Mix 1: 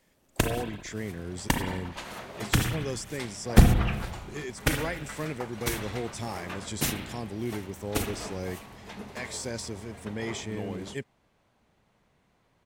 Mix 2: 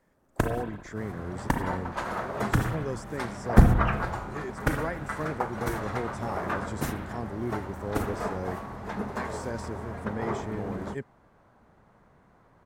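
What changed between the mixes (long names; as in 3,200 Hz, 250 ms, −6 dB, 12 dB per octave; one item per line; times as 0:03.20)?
second sound +8.5 dB
master: add high shelf with overshoot 2,000 Hz −10 dB, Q 1.5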